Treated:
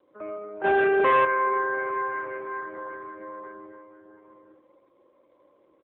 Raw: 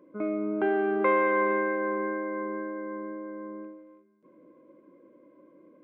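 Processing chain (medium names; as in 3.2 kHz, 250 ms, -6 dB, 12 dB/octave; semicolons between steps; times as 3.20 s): 2.15–2.69 s: octave divider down 1 oct, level -3 dB; steep high-pass 180 Hz 48 dB/octave; three-band isolator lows -20 dB, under 450 Hz, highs -16 dB, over 2.7 kHz; flutter echo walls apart 8.7 m, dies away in 0.35 s; 3.20–3.72 s: dynamic bell 370 Hz, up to +4 dB, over -59 dBFS, Q 0.71; multi-tap echo 42/56/82/438/848 ms -17.5/-12.5/-5/-16/-8 dB; 0.64–1.25 s: waveshaping leveller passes 3; AMR-NB 7.4 kbps 8 kHz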